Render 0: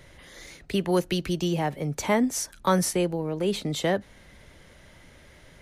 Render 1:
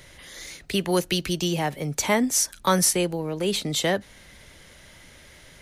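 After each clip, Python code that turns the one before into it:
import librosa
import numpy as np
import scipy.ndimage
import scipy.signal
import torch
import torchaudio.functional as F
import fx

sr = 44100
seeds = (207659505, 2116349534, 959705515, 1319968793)

y = fx.high_shelf(x, sr, hz=2100.0, db=9.0)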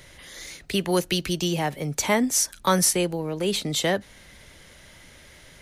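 y = x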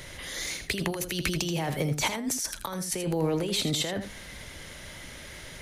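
y = fx.over_compress(x, sr, threshold_db=-30.0, ratio=-1.0)
y = y + 10.0 ** (-9.5 / 20.0) * np.pad(y, (int(81 * sr / 1000.0), 0))[:len(y)]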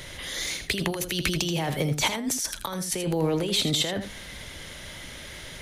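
y = fx.peak_eq(x, sr, hz=3400.0, db=4.0, octaves=0.47)
y = F.gain(torch.from_numpy(y), 2.0).numpy()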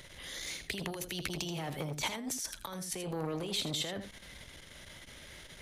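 y = fx.transformer_sat(x, sr, knee_hz=1000.0)
y = F.gain(torch.from_numpy(y), -9.0).numpy()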